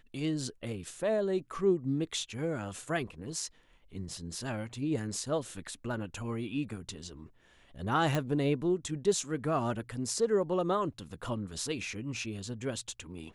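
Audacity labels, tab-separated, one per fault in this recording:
8.150000	8.150000	click

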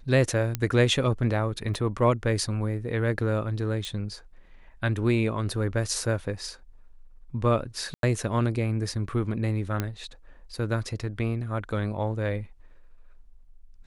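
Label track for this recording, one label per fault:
0.550000	0.550000	click −12 dBFS
1.740000	1.740000	drop-out 2.9 ms
3.850000	3.850000	click −21 dBFS
7.940000	8.030000	drop-out 92 ms
9.800000	9.800000	click −13 dBFS

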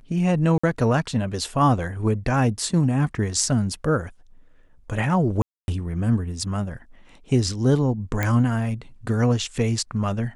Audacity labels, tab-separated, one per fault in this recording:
0.580000	0.640000	drop-out 55 ms
5.420000	5.680000	drop-out 261 ms
8.230000	8.230000	click −10 dBFS

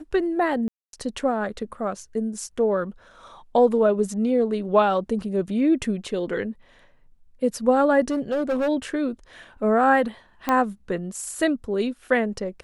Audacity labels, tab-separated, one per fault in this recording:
0.680000	0.930000	drop-out 252 ms
8.100000	8.690000	clipping −20 dBFS
10.490000	10.490000	click −9 dBFS

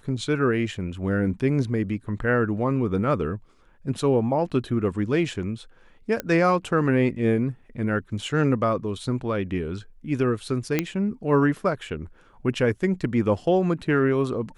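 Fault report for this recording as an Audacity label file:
6.200000	6.200000	click −13 dBFS
10.790000	10.790000	click −8 dBFS

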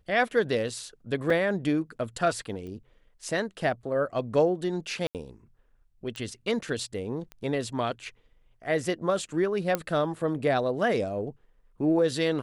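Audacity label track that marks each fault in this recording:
1.300000	1.300000	drop-out 3.6 ms
2.670000	2.670000	click −31 dBFS
5.070000	5.150000	drop-out 78 ms
6.160000	6.160000	click −22 dBFS
7.320000	7.320000	click −26 dBFS
9.750000	9.750000	click −12 dBFS

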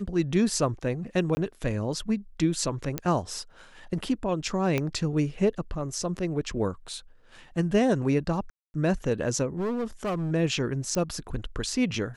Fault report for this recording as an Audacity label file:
1.350000	1.370000	drop-out 20 ms
2.980000	2.980000	click −12 dBFS
4.780000	4.780000	click −13 dBFS
8.500000	8.740000	drop-out 241 ms
9.570000	10.320000	clipping −25.5 dBFS
10.950000	10.950000	click −16 dBFS

